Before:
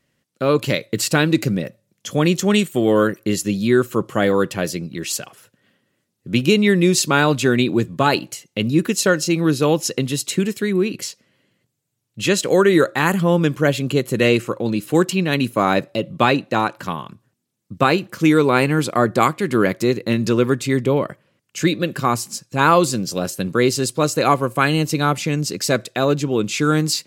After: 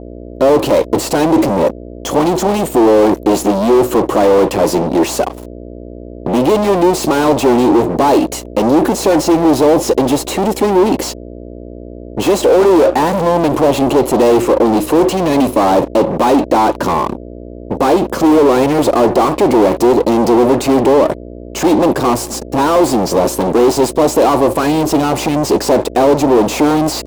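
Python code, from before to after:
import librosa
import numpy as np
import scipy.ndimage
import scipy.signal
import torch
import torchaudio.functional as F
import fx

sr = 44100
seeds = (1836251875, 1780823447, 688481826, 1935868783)

y = fx.fuzz(x, sr, gain_db=38.0, gate_db=-44.0)
y = fx.dmg_buzz(y, sr, base_hz=60.0, harmonics=11, level_db=-27.0, tilt_db=-7, odd_only=False)
y = fx.band_shelf(y, sr, hz=510.0, db=14.5, octaves=2.4)
y = F.gain(torch.from_numpy(y), -7.5).numpy()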